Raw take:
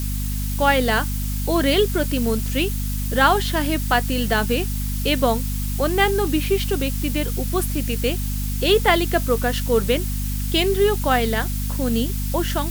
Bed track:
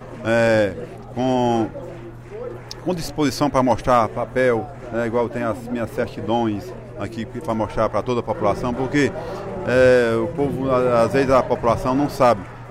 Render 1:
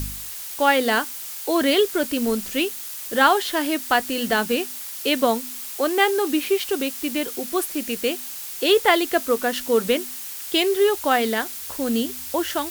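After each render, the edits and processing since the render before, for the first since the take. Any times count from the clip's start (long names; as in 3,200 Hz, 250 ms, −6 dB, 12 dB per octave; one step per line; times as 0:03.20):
hum removal 50 Hz, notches 5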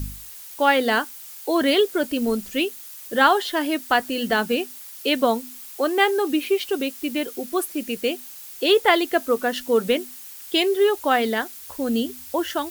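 broadband denoise 8 dB, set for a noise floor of −34 dBFS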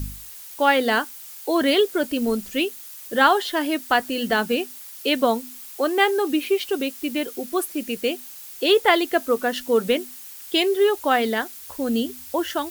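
no processing that can be heard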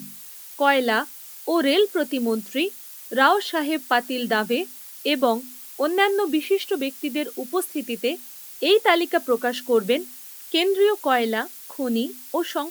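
elliptic high-pass filter 170 Hz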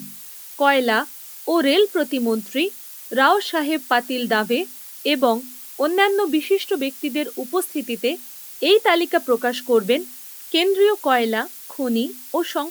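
level +2.5 dB
brickwall limiter −3 dBFS, peak gain reduction 3 dB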